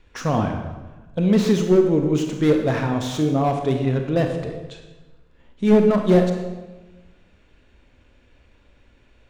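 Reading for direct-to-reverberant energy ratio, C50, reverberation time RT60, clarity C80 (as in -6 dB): 4.0 dB, 5.5 dB, 1.1 s, 7.5 dB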